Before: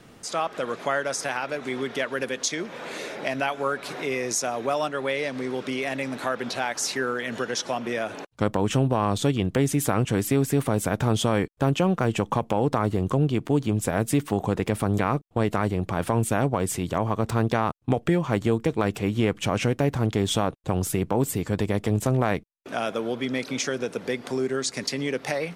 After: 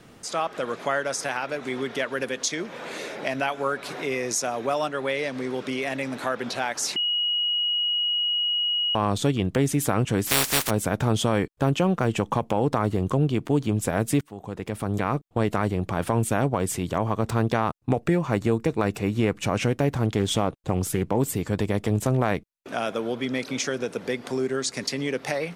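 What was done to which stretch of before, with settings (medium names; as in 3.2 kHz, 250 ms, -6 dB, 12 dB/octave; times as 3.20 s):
6.96–8.95 s: bleep 2.9 kHz -21.5 dBFS
10.26–10.69 s: spectral contrast reduction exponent 0.21
14.21–15.25 s: fade in, from -23.5 dB
17.77–19.58 s: band-stop 3.2 kHz, Q 8.7
20.19–21.19 s: loudspeaker Doppler distortion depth 0.22 ms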